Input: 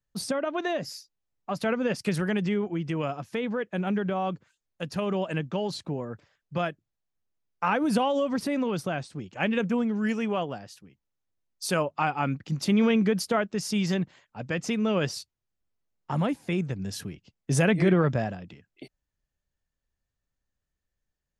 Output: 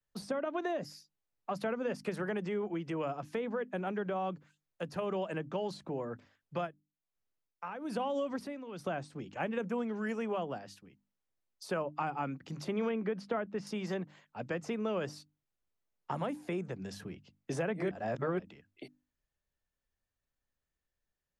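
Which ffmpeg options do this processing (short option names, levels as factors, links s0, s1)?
-filter_complex "[0:a]asplit=3[s0][s1][s2];[s0]afade=t=out:st=6.65:d=0.02[s3];[s1]tremolo=f=1.1:d=0.83,afade=t=in:st=6.65:d=0.02,afade=t=out:st=8.84:d=0.02[s4];[s2]afade=t=in:st=8.84:d=0.02[s5];[s3][s4][s5]amix=inputs=3:normalize=0,asettb=1/sr,asplit=3[s6][s7][s8];[s6]atrim=end=12.894[s9];[s7]atrim=start=12.89:end=13.67,asetpts=PTS-STARTPTS,afade=t=in:d=0.004:c=qsin,afade=t=out:st=0.776:d=0.004:c=qsin,lowpass=2800[s10];[s8]atrim=start=13.666[s11];[s9][s10]acrossfade=d=0.004:c1=hsin:c2=qsin[s12];[s12][s11]acrossfade=d=0.004:c1=qsin:c2=hsin,asplit=3[s13][s14][s15];[s13]atrim=end=17.912[s16];[s14]atrim=start=17.908:end=18.392,asetpts=PTS-STARTPTS,areverse[s17];[s15]atrim=start=18.388[s18];[s16][s17]acrossfade=d=0.004:c1=hsin:c2=hsin[s19];[s19][s18]acrossfade=d=0.004:c1=hsin:c2=hsin,bass=f=250:g=-4,treble=f=4000:g=-4,bandreject=f=50:t=h:w=6,bandreject=f=100:t=h:w=6,bandreject=f=150:t=h:w=6,bandreject=f=200:t=h:w=6,bandreject=f=250:t=h:w=6,bandreject=f=300:t=h:w=6,acrossover=split=150|310|1600|6700[s20][s21][s22][s23][s24];[s20]acompressor=threshold=0.00355:ratio=4[s25];[s21]acompressor=threshold=0.00794:ratio=4[s26];[s22]acompressor=threshold=0.0251:ratio=4[s27];[s23]acompressor=threshold=0.00282:ratio=4[s28];[s24]acompressor=threshold=0.00126:ratio=4[s29];[s25][s26][s27][s28][s29]amix=inputs=5:normalize=0,volume=0.841"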